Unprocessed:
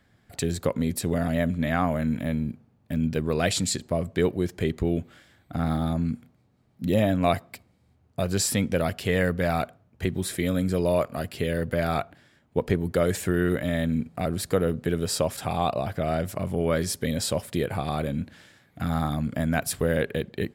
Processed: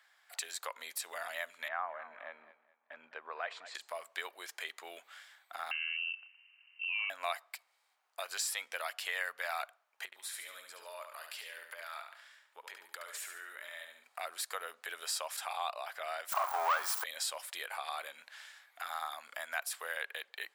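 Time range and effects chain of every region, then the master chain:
1.68–3.75 LPF 1400 Hz + feedback echo 0.21 s, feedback 32%, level -18 dB
5.71–7.1 compressor 2:1, threshold -34 dBFS + inverted band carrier 2900 Hz
10.05–14.04 notch 750 Hz, Q 6.7 + compressor 2.5:1, threshold -39 dBFS + feedback echo 71 ms, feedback 37%, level -6.5 dB
16.32–17.04 switching spikes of -23 dBFS + band shelf 1000 Hz +14.5 dB 1.3 oct + sample leveller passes 3
whole clip: de-esser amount 45%; HPF 880 Hz 24 dB/oct; compressor 1.5:1, threshold -47 dBFS; gain +1.5 dB

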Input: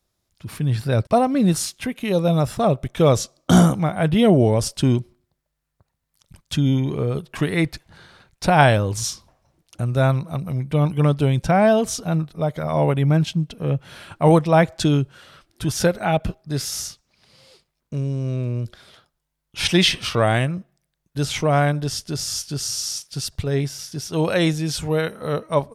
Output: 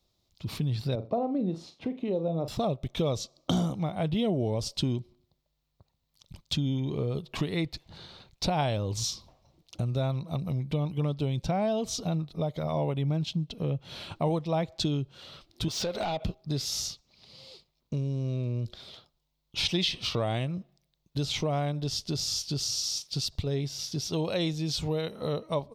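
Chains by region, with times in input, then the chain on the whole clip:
0.95–2.48 band-pass 410 Hz, Q 0.87 + flutter echo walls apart 7.3 m, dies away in 0.24 s
15.68–16.24 compressor 4:1, threshold -28 dBFS + overdrive pedal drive 19 dB, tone 4600 Hz, clips at -17 dBFS
whole clip: fifteen-band EQ 1600 Hz -11 dB, 4000 Hz +7 dB, 10000 Hz -12 dB; compressor 3:1, threshold -29 dBFS

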